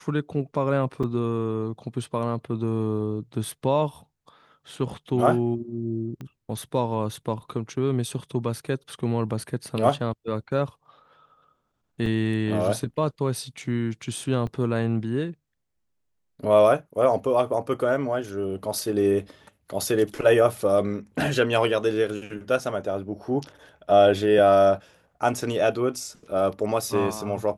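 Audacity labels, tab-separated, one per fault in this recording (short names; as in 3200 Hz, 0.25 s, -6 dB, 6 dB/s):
1.030000	1.040000	gap 5.5 ms
6.210000	6.210000	pop -26 dBFS
12.060000	12.060000	gap 2.2 ms
14.470000	14.470000	gap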